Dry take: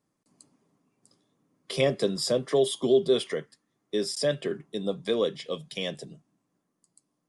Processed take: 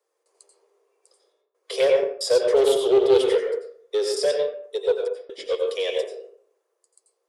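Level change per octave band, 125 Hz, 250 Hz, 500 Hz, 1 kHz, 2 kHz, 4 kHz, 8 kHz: under -10 dB, -1.5 dB, +7.0 dB, +6.0 dB, +3.0 dB, +2.0 dB, +2.0 dB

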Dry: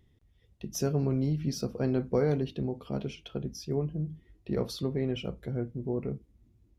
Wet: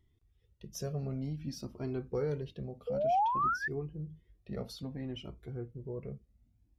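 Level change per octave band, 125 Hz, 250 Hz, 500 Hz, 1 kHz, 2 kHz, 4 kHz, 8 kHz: -8.0 dB, -9.5 dB, -5.0 dB, +12.5 dB, +6.0 dB, -7.0 dB, n/a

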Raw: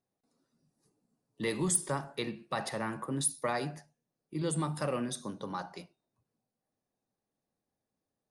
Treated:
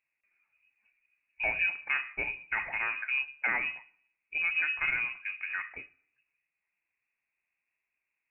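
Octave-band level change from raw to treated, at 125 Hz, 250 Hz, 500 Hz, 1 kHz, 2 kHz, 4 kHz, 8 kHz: under -20 dB, -19.5 dB, -12.0 dB, -3.5 dB, +15.0 dB, -2.5 dB, under -40 dB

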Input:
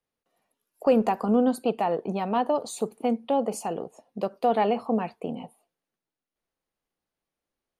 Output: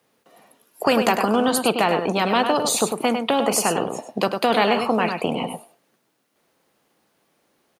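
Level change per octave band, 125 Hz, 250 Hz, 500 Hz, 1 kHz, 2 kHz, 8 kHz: +5.5, +3.5, +4.5, +6.5, +16.0, +16.5 dB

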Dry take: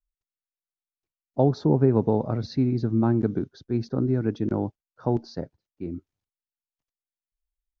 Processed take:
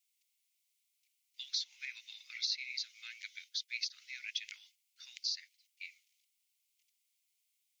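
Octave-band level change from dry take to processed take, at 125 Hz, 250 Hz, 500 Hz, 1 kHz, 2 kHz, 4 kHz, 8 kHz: under -40 dB, under -40 dB, under -40 dB, under -40 dB, +4.0 dB, +10.5 dB, n/a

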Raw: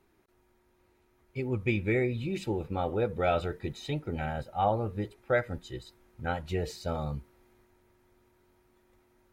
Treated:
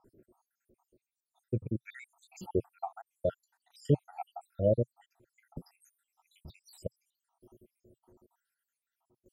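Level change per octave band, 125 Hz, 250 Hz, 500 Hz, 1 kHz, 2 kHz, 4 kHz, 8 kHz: -3.0 dB, -4.5 dB, -3.5 dB, -12.5 dB, -19.0 dB, under -15 dB, n/a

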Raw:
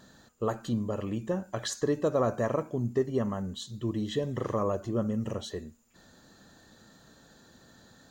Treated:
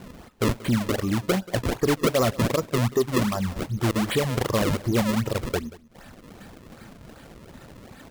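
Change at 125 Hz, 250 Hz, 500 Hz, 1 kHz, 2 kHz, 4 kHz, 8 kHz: +8.5, +7.0, +4.5, +7.0, +13.5, +10.0, +9.0 dB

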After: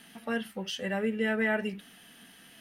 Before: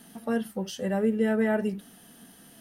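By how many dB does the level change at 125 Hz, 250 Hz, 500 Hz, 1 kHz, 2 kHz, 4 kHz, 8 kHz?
-6.0, -5.5, -4.5, -2.5, +4.5, +5.0, -3.0 dB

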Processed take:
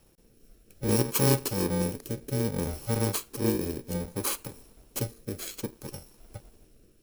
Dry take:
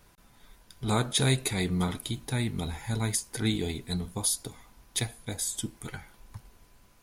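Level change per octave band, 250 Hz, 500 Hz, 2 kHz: +1.5, +5.5, -3.5 dB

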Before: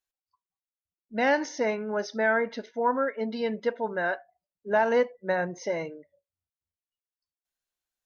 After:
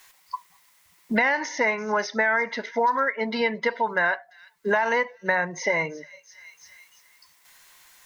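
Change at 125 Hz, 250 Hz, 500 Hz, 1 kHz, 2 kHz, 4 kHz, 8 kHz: +2.5 dB, +1.0 dB, 0.0 dB, +4.5 dB, +7.5 dB, +6.0 dB, n/a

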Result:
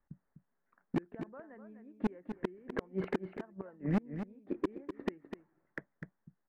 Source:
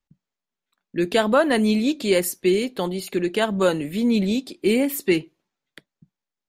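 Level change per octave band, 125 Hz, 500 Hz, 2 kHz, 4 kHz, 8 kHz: -10.5 dB, -20.0 dB, -19.5 dB, -30.0 dB, under -35 dB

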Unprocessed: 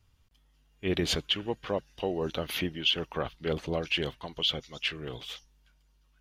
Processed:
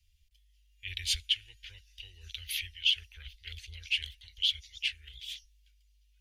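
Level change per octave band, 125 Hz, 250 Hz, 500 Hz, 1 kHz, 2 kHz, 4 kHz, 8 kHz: -11.5 dB, under -40 dB, under -40 dB, under -35 dB, -2.0 dB, 0.0 dB, +1.5 dB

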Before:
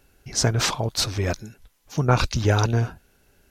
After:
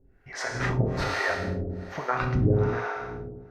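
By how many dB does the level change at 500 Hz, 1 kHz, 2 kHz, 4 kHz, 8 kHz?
-1.5, -2.5, +1.0, -13.0, -16.5 dB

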